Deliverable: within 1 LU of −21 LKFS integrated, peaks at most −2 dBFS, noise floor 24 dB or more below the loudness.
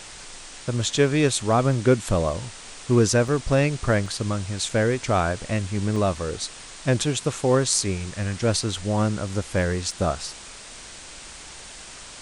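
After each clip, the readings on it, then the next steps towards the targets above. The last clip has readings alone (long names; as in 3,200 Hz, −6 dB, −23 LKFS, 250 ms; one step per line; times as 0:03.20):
number of dropouts 5; longest dropout 3.2 ms; background noise floor −42 dBFS; target noise floor −48 dBFS; integrated loudness −23.5 LKFS; sample peak −3.0 dBFS; target loudness −21.0 LKFS
→ repair the gap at 0:03.28/0:04.06/0:04.69/0:05.96/0:09.91, 3.2 ms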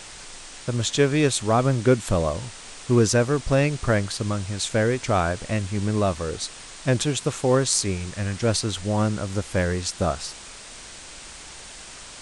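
number of dropouts 0; background noise floor −42 dBFS; target noise floor −48 dBFS
→ broadband denoise 6 dB, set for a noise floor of −42 dBFS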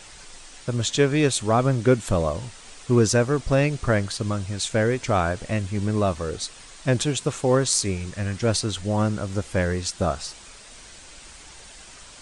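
background noise floor −45 dBFS; target noise floor −48 dBFS
→ broadband denoise 6 dB, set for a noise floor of −45 dBFS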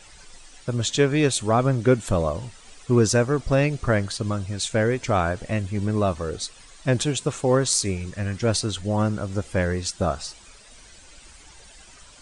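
background noise floor −49 dBFS; integrated loudness −23.5 LKFS; sample peak −3.0 dBFS; target loudness −21.0 LKFS
→ level +2.5 dB
brickwall limiter −2 dBFS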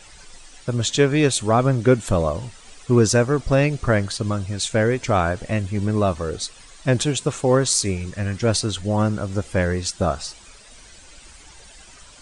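integrated loudness −21.0 LKFS; sample peak −2.0 dBFS; background noise floor −46 dBFS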